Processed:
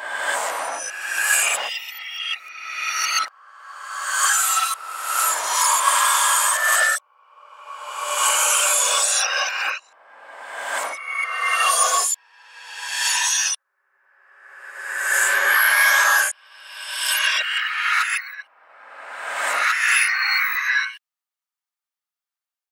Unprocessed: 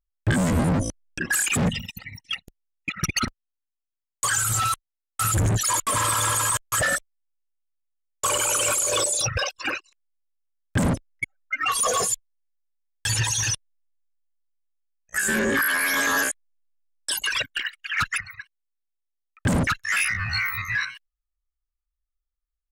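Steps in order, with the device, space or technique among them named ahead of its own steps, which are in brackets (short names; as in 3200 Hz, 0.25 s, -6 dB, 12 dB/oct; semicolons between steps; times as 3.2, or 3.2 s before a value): ghost voice (reverse; reverb RT60 1.8 s, pre-delay 5 ms, DRR -6 dB; reverse; HPF 690 Hz 24 dB/oct)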